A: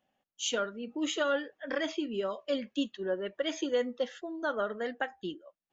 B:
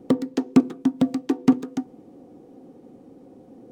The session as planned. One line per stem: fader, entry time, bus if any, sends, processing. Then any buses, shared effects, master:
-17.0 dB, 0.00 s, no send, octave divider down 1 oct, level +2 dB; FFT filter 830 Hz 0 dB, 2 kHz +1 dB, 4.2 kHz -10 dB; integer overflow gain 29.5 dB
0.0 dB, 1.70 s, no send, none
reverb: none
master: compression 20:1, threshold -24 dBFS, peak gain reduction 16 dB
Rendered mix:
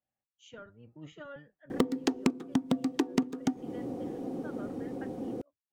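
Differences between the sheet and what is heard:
stem A: missing integer overflow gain 29.5 dB; stem B 0.0 dB -> +9.5 dB

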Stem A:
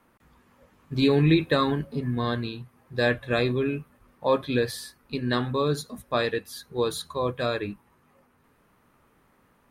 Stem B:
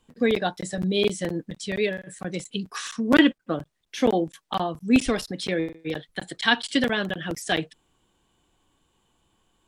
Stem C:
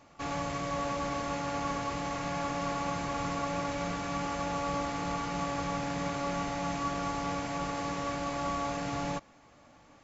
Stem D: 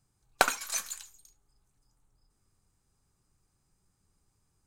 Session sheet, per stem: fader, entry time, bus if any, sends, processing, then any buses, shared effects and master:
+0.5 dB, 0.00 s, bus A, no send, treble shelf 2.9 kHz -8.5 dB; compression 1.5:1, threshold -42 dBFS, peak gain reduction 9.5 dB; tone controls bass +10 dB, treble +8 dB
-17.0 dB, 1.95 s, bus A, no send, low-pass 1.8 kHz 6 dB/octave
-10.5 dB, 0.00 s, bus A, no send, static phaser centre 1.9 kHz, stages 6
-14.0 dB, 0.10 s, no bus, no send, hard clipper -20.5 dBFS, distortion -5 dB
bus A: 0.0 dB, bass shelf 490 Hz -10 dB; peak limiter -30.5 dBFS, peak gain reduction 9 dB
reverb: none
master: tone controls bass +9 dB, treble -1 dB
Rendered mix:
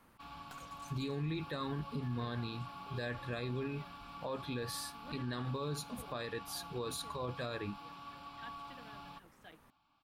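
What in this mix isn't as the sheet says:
stem B -17.0 dB -> -27.5 dB; stem D -14.0 dB -> -25.5 dB; master: missing tone controls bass +9 dB, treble -1 dB

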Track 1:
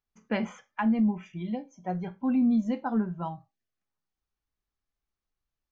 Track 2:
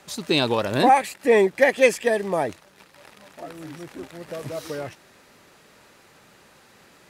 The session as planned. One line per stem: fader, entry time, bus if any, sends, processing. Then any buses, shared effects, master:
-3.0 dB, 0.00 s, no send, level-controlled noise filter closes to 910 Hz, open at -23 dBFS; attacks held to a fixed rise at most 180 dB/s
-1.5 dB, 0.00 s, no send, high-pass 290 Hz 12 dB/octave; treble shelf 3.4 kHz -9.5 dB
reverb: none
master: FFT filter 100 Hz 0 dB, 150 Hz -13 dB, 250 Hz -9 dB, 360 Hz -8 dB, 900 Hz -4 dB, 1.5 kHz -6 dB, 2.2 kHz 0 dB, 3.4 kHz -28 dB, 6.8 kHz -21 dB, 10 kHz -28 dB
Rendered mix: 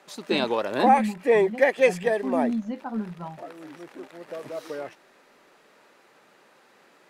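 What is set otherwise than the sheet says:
stem 1: missing attacks held to a fixed rise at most 180 dB/s; master: missing FFT filter 100 Hz 0 dB, 150 Hz -13 dB, 250 Hz -9 dB, 360 Hz -8 dB, 900 Hz -4 dB, 1.5 kHz -6 dB, 2.2 kHz 0 dB, 3.4 kHz -28 dB, 6.8 kHz -21 dB, 10 kHz -28 dB

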